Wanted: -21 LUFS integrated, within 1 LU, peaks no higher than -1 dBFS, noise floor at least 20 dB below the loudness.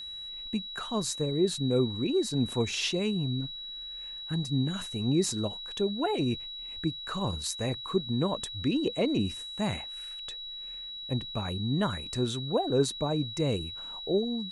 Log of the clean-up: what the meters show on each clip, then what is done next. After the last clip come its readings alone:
steady tone 3.9 kHz; tone level -38 dBFS; loudness -30.5 LUFS; peak level -13.5 dBFS; loudness target -21.0 LUFS
-> band-stop 3.9 kHz, Q 30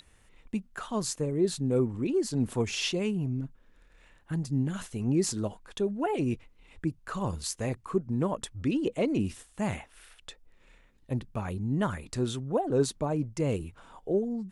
steady tone not found; loudness -31.0 LUFS; peak level -13.5 dBFS; loudness target -21.0 LUFS
-> trim +10 dB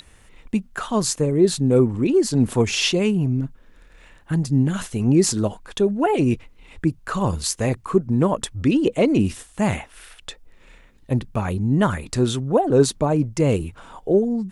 loudness -21.0 LUFS; peak level -3.5 dBFS; noise floor -51 dBFS

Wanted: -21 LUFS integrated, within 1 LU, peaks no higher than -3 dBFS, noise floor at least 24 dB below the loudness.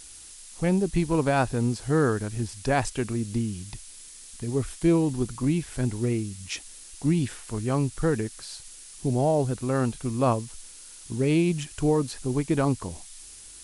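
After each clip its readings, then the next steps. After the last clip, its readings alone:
noise floor -46 dBFS; noise floor target -51 dBFS; loudness -26.5 LUFS; peak level -10.5 dBFS; loudness target -21.0 LUFS
-> noise print and reduce 6 dB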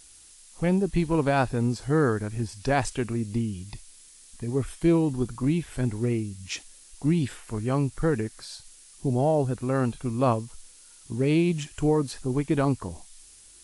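noise floor -52 dBFS; loudness -26.5 LUFS; peak level -10.5 dBFS; loudness target -21.0 LUFS
-> trim +5.5 dB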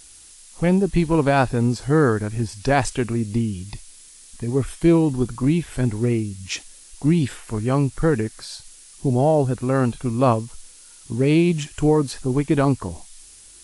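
loudness -21.0 LUFS; peak level -5.0 dBFS; noise floor -46 dBFS

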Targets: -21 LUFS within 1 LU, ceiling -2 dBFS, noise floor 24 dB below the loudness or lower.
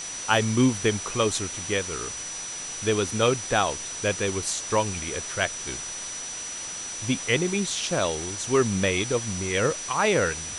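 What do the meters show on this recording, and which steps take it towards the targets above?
steady tone 5.9 kHz; tone level -34 dBFS; noise floor -35 dBFS; noise floor target -50 dBFS; loudness -25.5 LUFS; peak level -5.5 dBFS; loudness target -21.0 LUFS
-> band-stop 5.9 kHz, Q 30; noise reduction 15 dB, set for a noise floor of -35 dBFS; trim +4.5 dB; peak limiter -2 dBFS

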